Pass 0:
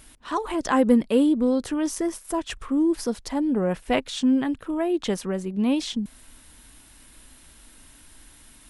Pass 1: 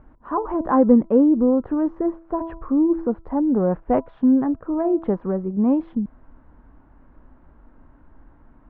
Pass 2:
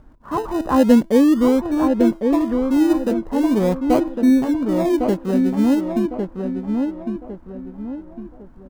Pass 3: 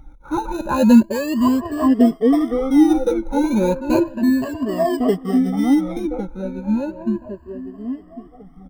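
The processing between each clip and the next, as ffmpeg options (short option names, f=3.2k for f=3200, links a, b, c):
-af "lowpass=f=1.2k:w=0.5412,lowpass=f=1.2k:w=1.3066,bandreject=f=329.6:t=h:w=4,bandreject=f=659.2:t=h:w=4,bandreject=f=988.8:t=h:w=4,bandreject=f=1.3184k:t=h:w=4,volume=4dB"
-filter_complex "[0:a]asplit=2[a][b];[b]acrusher=samples=31:mix=1:aa=0.000001:lfo=1:lforange=18.6:lforate=0.41,volume=-11dB[c];[a][c]amix=inputs=2:normalize=0,asplit=2[d][e];[e]adelay=1105,lowpass=f=1.8k:p=1,volume=-4.5dB,asplit=2[f][g];[g]adelay=1105,lowpass=f=1.8k:p=1,volume=0.37,asplit=2[h][i];[i]adelay=1105,lowpass=f=1.8k:p=1,volume=0.37,asplit=2[j][k];[k]adelay=1105,lowpass=f=1.8k:p=1,volume=0.37,asplit=2[l][m];[m]adelay=1105,lowpass=f=1.8k:p=1,volume=0.37[n];[d][f][h][j][l][n]amix=inputs=6:normalize=0"
-af "afftfilt=real='re*pow(10,22/40*sin(2*PI*(1.4*log(max(b,1)*sr/1024/100)/log(2)-(0.33)*(pts-256)/sr)))':imag='im*pow(10,22/40*sin(2*PI*(1.4*log(max(b,1)*sr/1024/100)/log(2)-(0.33)*(pts-256)/sr)))':win_size=1024:overlap=0.75,flanger=delay=1:depth=3.8:regen=-43:speed=0.7:shape=sinusoidal"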